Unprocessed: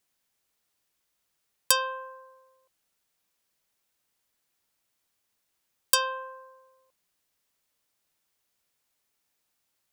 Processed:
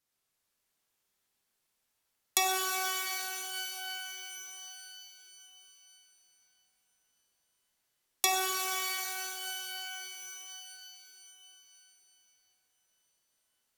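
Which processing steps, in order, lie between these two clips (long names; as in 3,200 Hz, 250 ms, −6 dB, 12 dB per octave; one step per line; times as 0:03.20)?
speed change −28%
reverb with rising layers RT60 3.8 s, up +12 semitones, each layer −2 dB, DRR −1.5 dB
level −7.5 dB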